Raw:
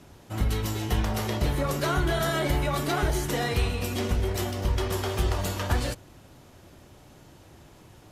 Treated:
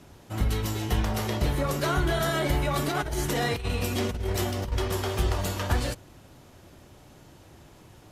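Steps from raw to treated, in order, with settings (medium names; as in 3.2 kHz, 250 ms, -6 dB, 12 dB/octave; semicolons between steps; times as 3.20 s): 2.71–4.72 s: compressor with a negative ratio -27 dBFS, ratio -0.5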